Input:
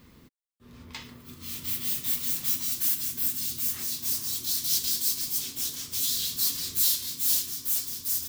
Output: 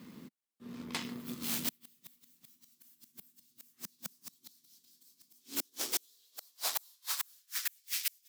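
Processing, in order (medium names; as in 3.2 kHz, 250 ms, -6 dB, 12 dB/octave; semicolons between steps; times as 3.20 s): inverted gate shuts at -20 dBFS, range -37 dB; Chebyshev shaper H 8 -13 dB, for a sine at -17 dBFS; high-pass sweep 200 Hz -> 2.2 kHz, 5.22–7.88 s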